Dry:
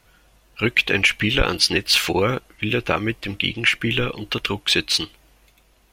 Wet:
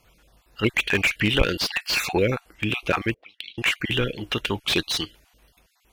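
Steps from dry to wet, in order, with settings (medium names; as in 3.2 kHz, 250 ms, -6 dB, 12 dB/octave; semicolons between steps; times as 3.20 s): random holes in the spectrogram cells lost 25%; Chebyshev shaper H 7 -33 dB, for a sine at -2.5 dBFS; 3.14–3.58 s: auto-wah 430–3800 Hz, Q 6.1, up, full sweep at -25.5 dBFS; slew-rate limiter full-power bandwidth 360 Hz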